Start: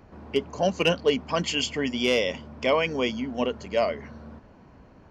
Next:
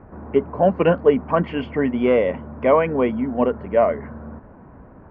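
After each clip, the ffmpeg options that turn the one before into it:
-af "lowpass=f=1700:w=0.5412,lowpass=f=1700:w=1.3066,volume=2.37"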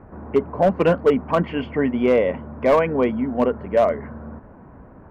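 -af "asoftclip=type=hard:threshold=0.335"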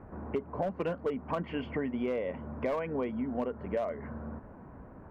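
-af "acompressor=threshold=0.0562:ratio=6,volume=0.562"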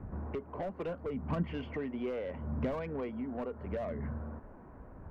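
-filter_complex "[0:a]acrossover=split=230[s0][s1];[s0]aphaser=in_gain=1:out_gain=1:delay=2.8:decay=0.71:speed=0.76:type=sinusoidal[s2];[s1]asoftclip=type=tanh:threshold=0.0335[s3];[s2][s3]amix=inputs=2:normalize=0,volume=0.75"

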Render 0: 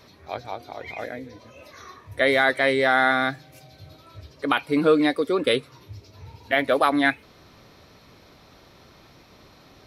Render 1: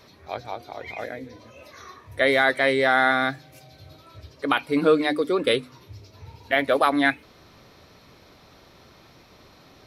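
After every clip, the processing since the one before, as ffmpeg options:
-af "bandreject=f=50:t=h:w=6,bandreject=f=100:t=h:w=6,bandreject=f=150:t=h:w=6,bandreject=f=200:t=h:w=6,bandreject=f=250:t=h:w=6,bandreject=f=300:t=h:w=6"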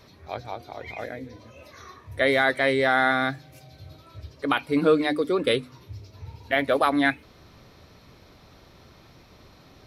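-af "lowshelf=f=160:g=7.5,volume=0.794"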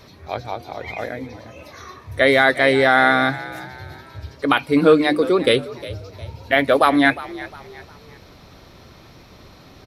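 -filter_complex "[0:a]asplit=4[s0][s1][s2][s3];[s1]adelay=357,afreqshift=54,volume=0.141[s4];[s2]adelay=714,afreqshift=108,volume=0.0525[s5];[s3]adelay=1071,afreqshift=162,volume=0.0193[s6];[s0][s4][s5][s6]amix=inputs=4:normalize=0,volume=2.11"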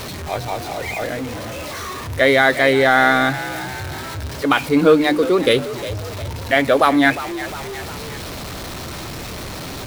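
-af "aeval=exprs='val(0)+0.5*0.0531*sgn(val(0))':c=same"

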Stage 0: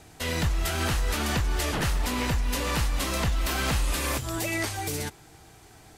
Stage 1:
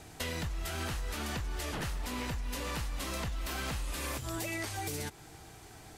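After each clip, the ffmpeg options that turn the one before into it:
-af "acompressor=threshold=0.02:ratio=6"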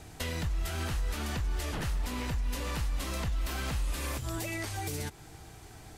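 -af "lowshelf=f=130:g=6.5"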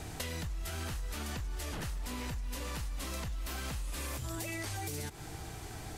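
-filter_complex "[0:a]acrossover=split=5000[s0][s1];[s0]alimiter=level_in=2.11:limit=0.0631:level=0:latency=1,volume=0.473[s2];[s2][s1]amix=inputs=2:normalize=0,acompressor=threshold=0.00891:ratio=6,volume=1.88"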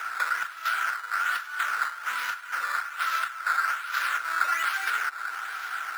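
-af "acrusher=samples=10:mix=1:aa=0.000001:lfo=1:lforange=10:lforate=1.2,highpass=f=1400:t=q:w=11,volume=2.37"

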